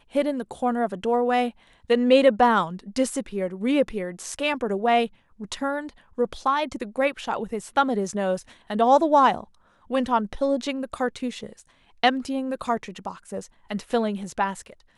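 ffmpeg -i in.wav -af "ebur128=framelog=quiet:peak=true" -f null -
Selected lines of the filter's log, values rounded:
Integrated loudness:
  I:         -24.2 LUFS
  Threshold: -34.7 LUFS
Loudness range:
  LRA:         5.4 LU
  Threshold: -44.6 LUFS
  LRA low:   -27.8 LUFS
  LRA high:  -22.4 LUFS
True peak:
  Peak:       -5.1 dBFS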